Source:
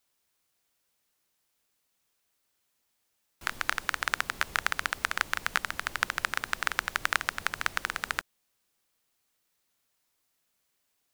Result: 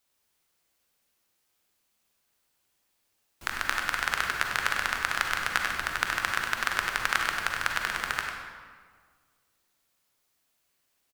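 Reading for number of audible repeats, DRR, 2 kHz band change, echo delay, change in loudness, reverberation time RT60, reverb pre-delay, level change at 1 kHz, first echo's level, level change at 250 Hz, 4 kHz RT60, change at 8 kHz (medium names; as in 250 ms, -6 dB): 1, 0.5 dB, +2.5 dB, 99 ms, +2.5 dB, 1.7 s, 37 ms, +3.0 dB, -8.0 dB, +3.0 dB, 1.1 s, +2.0 dB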